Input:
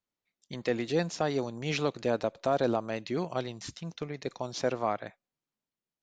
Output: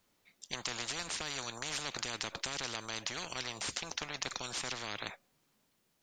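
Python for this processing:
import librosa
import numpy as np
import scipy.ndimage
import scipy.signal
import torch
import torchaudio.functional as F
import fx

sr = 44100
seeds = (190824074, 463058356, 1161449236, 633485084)

y = fx.spectral_comp(x, sr, ratio=10.0)
y = F.gain(torch.from_numpy(y), -1.0).numpy()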